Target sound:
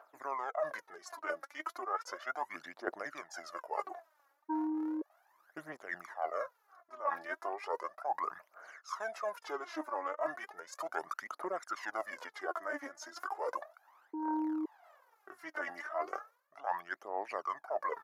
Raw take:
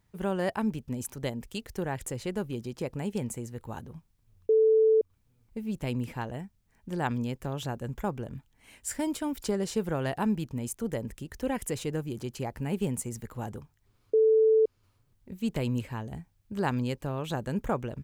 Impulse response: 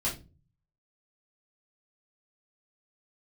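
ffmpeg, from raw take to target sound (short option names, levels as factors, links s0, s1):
-filter_complex "[0:a]aphaser=in_gain=1:out_gain=1:delay=2.6:decay=0.74:speed=0.35:type=triangular,asplit=2[s0][s1];[s1]acontrast=61,volume=1.41[s2];[s0][s2]amix=inputs=2:normalize=0,highpass=f=880:w=0.5412,highpass=f=880:w=1.3066,equalizer=f=12000:w=2.5:g=-11.5,areverse,acompressor=threshold=0.0158:ratio=16,areverse,highshelf=f=2900:t=q:w=1.5:g=-13.5,asetrate=31183,aresample=44100,atempo=1.41421,volume=1.33"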